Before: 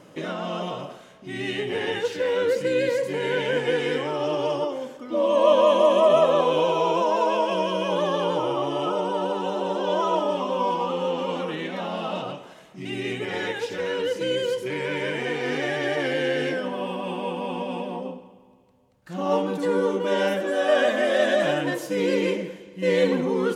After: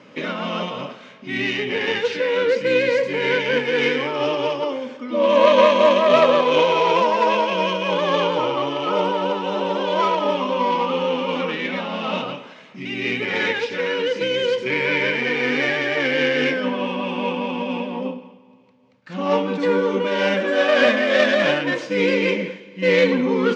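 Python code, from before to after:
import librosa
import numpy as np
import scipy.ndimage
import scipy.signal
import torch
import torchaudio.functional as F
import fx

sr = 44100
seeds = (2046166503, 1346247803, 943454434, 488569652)

y = fx.tracing_dist(x, sr, depth_ms=0.065)
y = fx.cabinet(y, sr, low_hz=130.0, low_slope=24, high_hz=5400.0, hz=(160.0, 240.0, 340.0, 710.0, 2300.0), db=(-7, 5, -8, -8, 7))
y = fx.am_noise(y, sr, seeds[0], hz=5.7, depth_pct=55)
y = F.gain(torch.from_numpy(y), 8.5).numpy()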